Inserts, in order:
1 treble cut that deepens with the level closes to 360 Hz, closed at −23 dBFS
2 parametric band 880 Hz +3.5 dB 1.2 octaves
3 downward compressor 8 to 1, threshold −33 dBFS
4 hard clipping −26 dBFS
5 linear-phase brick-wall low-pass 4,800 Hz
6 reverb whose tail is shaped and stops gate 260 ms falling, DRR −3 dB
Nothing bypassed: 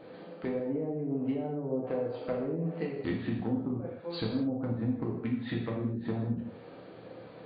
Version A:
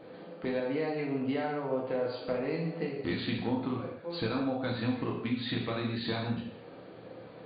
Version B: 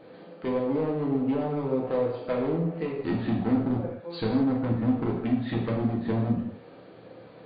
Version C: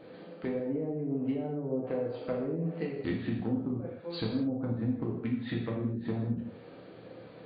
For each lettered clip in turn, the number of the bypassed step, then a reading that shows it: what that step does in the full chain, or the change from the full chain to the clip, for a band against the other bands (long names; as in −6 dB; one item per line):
1, 125 Hz band −8.0 dB
3, average gain reduction 5.5 dB
2, 1 kHz band −2.0 dB